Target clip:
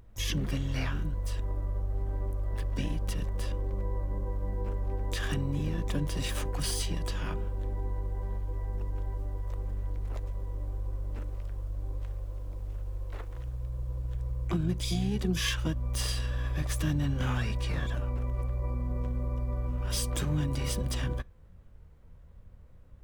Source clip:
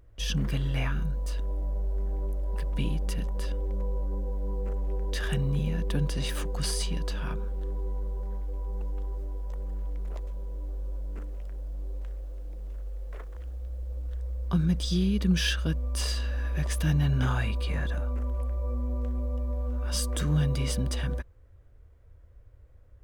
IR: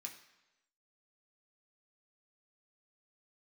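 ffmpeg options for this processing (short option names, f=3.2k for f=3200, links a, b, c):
-filter_complex "[0:a]asplit=3[a][b][c];[b]asetrate=29433,aresample=44100,atempo=1.49831,volume=-8dB[d];[c]asetrate=88200,aresample=44100,atempo=0.5,volume=-8dB[e];[a][d][e]amix=inputs=3:normalize=0,acompressor=threshold=-29dB:ratio=2,asplit=2[f][g];[1:a]atrim=start_sample=2205,atrim=end_sample=3528[h];[g][h]afir=irnorm=-1:irlink=0,volume=-12.5dB[i];[f][i]amix=inputs=2:normalize=0"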